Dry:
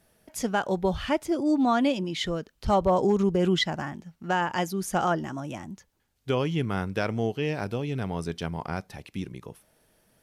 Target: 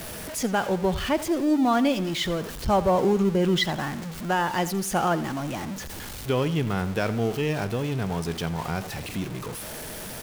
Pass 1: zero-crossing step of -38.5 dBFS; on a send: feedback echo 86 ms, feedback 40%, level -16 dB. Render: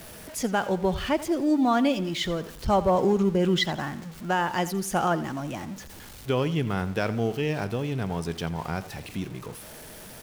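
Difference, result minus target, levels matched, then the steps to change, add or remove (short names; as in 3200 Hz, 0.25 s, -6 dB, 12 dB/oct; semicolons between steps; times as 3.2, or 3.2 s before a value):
zero-crossing step: distortion -7 dB
change: zero-crossing step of -31 dBFS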